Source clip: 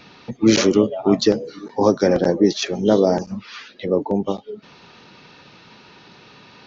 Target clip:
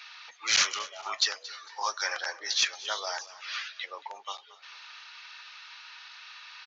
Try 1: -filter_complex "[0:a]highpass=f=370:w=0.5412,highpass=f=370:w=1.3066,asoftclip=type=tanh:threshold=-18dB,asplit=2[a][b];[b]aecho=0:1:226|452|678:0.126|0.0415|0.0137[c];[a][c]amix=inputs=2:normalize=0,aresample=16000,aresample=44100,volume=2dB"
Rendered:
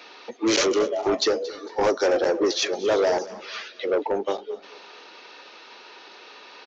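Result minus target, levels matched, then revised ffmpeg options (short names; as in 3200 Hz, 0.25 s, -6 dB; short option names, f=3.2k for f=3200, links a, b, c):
500 Hz band +18.0 dB
-filter_complex "[0:a]highpass=f=1.2k:w=0.5412,highpass=f=1.2k:w=1.3066,asoftclip=type=tanh:threshold=-18dB,asplit=2[a][b];[b]aecho=0:1:226|452|678:0.126|0.0415|0.0137[c];[a][c]amix=inputs=2:normalize=0,aresample=16000,aresample=44100,volume=2dB"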